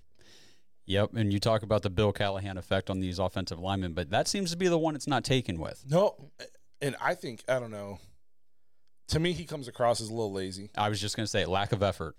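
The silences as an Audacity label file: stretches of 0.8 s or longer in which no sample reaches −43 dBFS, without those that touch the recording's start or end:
8.030000	9.090000	silence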